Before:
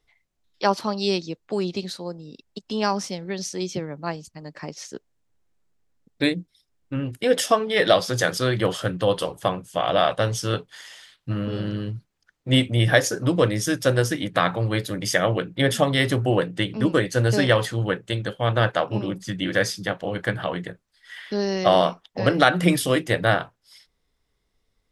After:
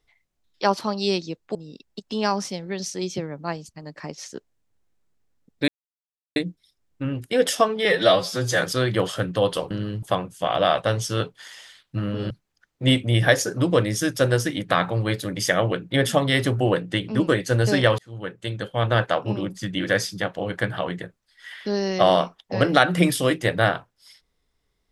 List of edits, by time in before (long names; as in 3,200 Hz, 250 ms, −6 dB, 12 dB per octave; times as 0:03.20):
0:01.55–0:02.14: remove
0:06.27: splice in silence 0.68 s
0:07.76–0:08.27: time-stretch 1.5×
0:11.64–0:11.96: move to 0:09.36
0:17.64–0:18.66: fade in equal-power